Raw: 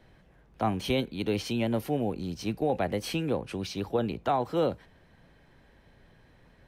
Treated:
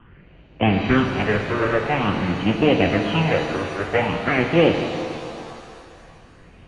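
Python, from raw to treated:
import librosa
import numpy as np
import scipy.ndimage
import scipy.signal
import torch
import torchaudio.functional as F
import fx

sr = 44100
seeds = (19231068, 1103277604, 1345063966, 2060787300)

y = fx.halfwave_hold(x, sr)
y = fx.phaser_stages(y, sr, stages=6, low_hz=200.0, high_hz=1500.0, hz=0.48, feedback_pct=25)
y = fx.mod_noise(y, sr, seeds[0], snr_db=13)
y = scipy.signal.sosfilt(scipy.signal.butter(16, 3100.0, 'lowpass', fs=sr, output='sos'), y)
y = fx.low_shelf(y, sr, hz=120.0, db=-8.0)
y = fx.rev_shimmer(y, sr, seeds[1], rt60_s=2.5, semitones=7, shimmer_db=-8, drr_db=4.0)
y = y * 10.0 ** (9.0 / 20.0)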